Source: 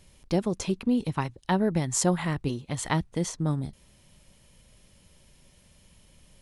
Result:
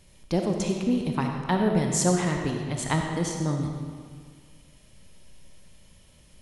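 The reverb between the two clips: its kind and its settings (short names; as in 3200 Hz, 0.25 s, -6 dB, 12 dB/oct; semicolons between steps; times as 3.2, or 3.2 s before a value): digital reverb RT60 1.8 s, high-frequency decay 0.8×, pre-delay 15 ms, DRR 2 dB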